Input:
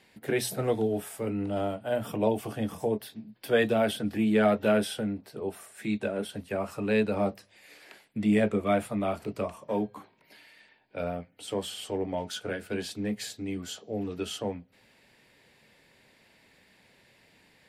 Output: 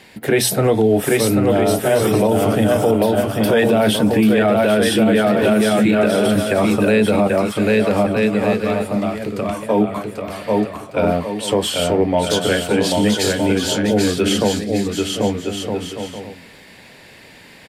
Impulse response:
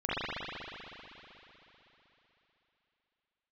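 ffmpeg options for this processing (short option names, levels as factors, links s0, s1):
-filter_complex "[0:a]asettb=1/sr,asplit=3[s0][s1][s2];[s0]atrim=end=7.274[s3];[s1]atrim=start=7.27:end=9.49,asetpts=PTS-STARTPTS,afade=t=in:d=0.004:c=qsin,afade=t=out:st=2.216:d=0.004:c=qsin,acompressor=threshold=0.0141:ratio=6[s4];[s2]atrim=start=9.486[s5];[s3][s4]acrossfade=d=0.004:c1=hsin:c2=qsin[s6];[s6][s5]acrossfade=d=0.004:c1=qsin:c2=hsin,aecho=1:1:790|1264|1548|1719|1821:0.631|0.398|0.251|0.158|0.1,alimiter=level_in=11.9:limit=0.891:release=50:level=0:latency=1,volume=0.531"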